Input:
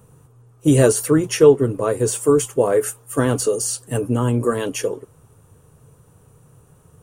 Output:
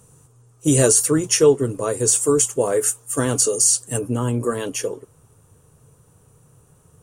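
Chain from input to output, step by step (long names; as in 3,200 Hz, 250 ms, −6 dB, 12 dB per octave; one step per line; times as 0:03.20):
parametric band 7,200 Hz +13 dB 1.4 octaves, from 0:03.99 +5.5 dB
level −3 dB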